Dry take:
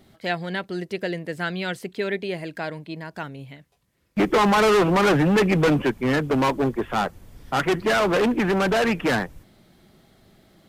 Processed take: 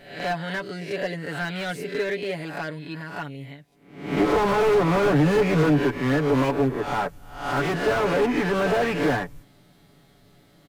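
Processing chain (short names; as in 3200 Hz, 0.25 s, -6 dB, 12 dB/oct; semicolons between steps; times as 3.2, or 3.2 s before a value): spectral swells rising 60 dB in 0.58 s; comb 7 ms, depth 70%; slew limiter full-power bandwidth 140 Hz; gain -3.5 dB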